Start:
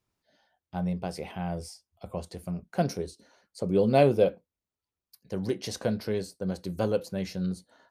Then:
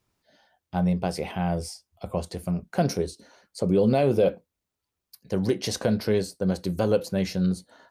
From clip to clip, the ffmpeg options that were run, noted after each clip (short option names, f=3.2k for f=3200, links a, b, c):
-af "alimiter=limit=-18.5dB:level=0:latency=1:release=67,volume=6.5dB"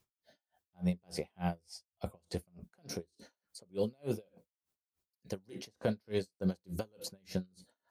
-filter_complex "[0:a]highshelf=f=6.2k:g=6.5,acrossover=split=2100|7000[a][b][c];[a]acompressor=threshold=-24dB:ratio=4[d];[b]acompressor=threshold=-38dB:ratio=4[e];[c]acompressor=threshold=-47dB:ratio=4[f];[d][e][f]amix=inputs=3:normalize=0,aeval=exprs='val(0)*pow(10,-40*(0.5-0.5*cos(2*PI*3.4*n/s))/20)':c=same,volume=-2dB"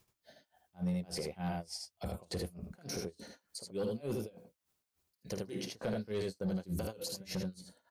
-filter_complex "[0:a]asplit=2[a][b];[b]aecho=0:1:52|78:0.237|0.631[c];[a][c]amix=inputs=2:normalize=0,aeval=exprs='0.112*sin(PI/2*1.58*val(0)/0.112)':c=same,alimiter=level_in=3.5dB:limit=-24dB:level=0:latency=1:release=24,volume=-3.5dB,volume=-2dB"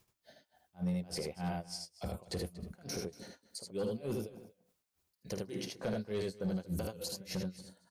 -af "aecho=1:1:235:0.119"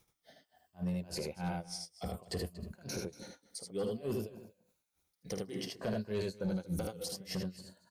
-af "afftfilt=real='re*pow(10,7/40*sin(2*PI*(1.4*log(max(b,1)*sr/1024/100)/log(2)-(-0.59)*(pts-256)/sr)))':imag='im*pow(10,7/40*sin(2*PI*(1.4*log(max(b,1)*sr/1024/100)/log(2)-(-0.59)*(pts-256)/sr)))':win_size=1024:overlap=0.75"